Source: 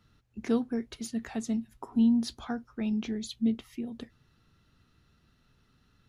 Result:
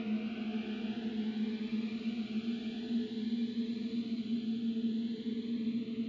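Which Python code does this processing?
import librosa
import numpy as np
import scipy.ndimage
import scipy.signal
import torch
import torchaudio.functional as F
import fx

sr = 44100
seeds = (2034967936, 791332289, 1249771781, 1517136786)

p1 = fx.reverse_delay(x, sr, ms=678, wet_db=-7.0)
p2 = scipy.signal.sosfilt(scipy.signal.butter(2, 70.0, 'highpass', fs=sr, output='sos'), p1)
p3 = p2 + fx.echo_stepped(p2, sr, ms=107, hz=320.0, octaves=0.7, feedback_pct=70, wet_db=0, dry=0)
p4 = fx.dereverb_blind(p3, sr, rt60_s=1.4)
p5 = fx.paulstretch(p4, sr, seeds[0], factor=9.6, window_s=1.0, from_s=2.92)
p6 = fx.ladder_lowpass(p5, sr, hz=3600.0, resonance_pct=35)
p7 = fx.rider(p6, sr, range_db=10, speed_s=0.5)
p8 = p6 + (p7 * librosa.db_to_amplitude(0.0))
p9 = fx.notch_cascade(p8, sr, direction='rising', hz=0.51)
y = p9 * librosa.db_to_amplitude(-3.0)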